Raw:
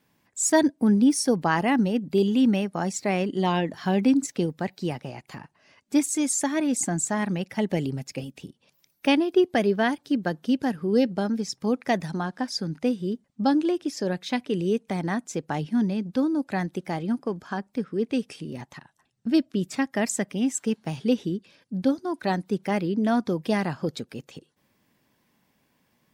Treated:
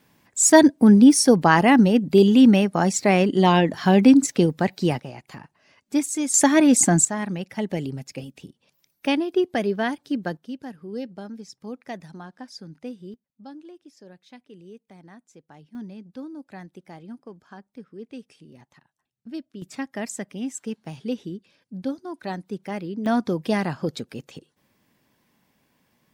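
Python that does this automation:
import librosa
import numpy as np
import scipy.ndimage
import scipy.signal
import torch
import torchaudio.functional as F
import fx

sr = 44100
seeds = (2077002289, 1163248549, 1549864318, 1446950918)

y = fx.gain(x, sr, db=fx.steps((0.0, 7.0), (5.0, -0.5), (6.34, 9.0), (7.05, -1.5), (10.37, -11.0), (13.14, -20.0), (15.75, -13.0), (19.62, -5.5), (23.06, 1.5)))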